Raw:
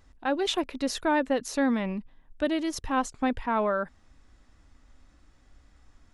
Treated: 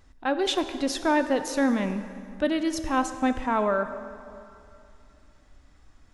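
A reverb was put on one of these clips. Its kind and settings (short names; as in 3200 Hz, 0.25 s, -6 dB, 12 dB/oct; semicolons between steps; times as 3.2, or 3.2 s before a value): plate-style reverb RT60 2.6 s, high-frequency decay 0.7×, DRR 9 dB; gain +1.5 dB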